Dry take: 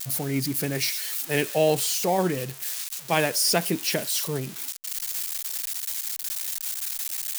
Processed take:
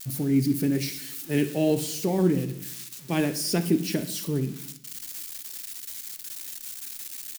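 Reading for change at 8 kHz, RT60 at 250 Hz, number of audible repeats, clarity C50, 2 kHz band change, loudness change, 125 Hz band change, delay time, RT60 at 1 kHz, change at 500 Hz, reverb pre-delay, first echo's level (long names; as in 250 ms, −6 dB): −7.0 dB, 1.0 s, 1, 12.5 dB, −7.5 dB, −2.5 dB, +3.5 dB, 61 ms, 0.60 s, −3.0 dB, 3 ms, −16.5 dB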